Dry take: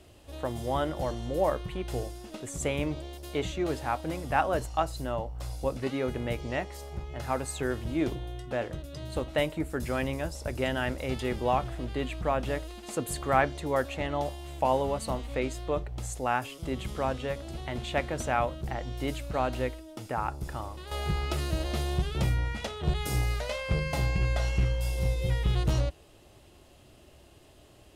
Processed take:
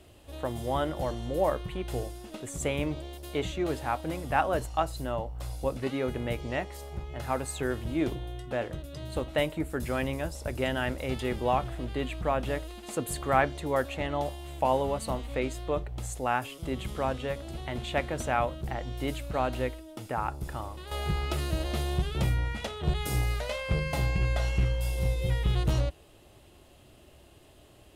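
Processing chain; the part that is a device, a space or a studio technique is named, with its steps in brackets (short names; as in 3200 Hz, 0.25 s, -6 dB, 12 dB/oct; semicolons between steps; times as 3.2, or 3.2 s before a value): exciter from parts (in parallel at -10 dB: HPF 3700 Hz 24 dB/oct + soft clip -35 dBFS, distortion -15 dB + HPF 4000 Hz 12 dB/oct)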